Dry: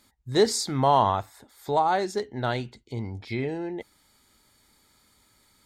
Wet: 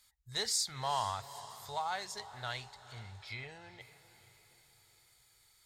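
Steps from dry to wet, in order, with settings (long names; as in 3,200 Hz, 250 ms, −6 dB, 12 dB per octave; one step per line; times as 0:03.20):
guitar amp tone stack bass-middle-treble 10-0-10
in parallel at −8.5 dB: soft clipping −25.5 dBFS, distortion −15 dB
on the sum: feedback delay with all-pass diffusion 453 ms, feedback 51%, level −15 dB
level −5 dB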